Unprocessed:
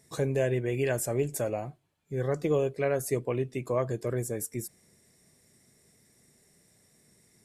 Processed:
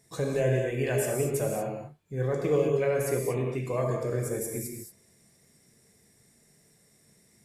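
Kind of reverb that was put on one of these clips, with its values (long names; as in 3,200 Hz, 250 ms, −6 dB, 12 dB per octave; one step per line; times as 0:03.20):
reverb whose tail is shaped and stops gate 260 ms flat, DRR −0.5 dB
level −2 dB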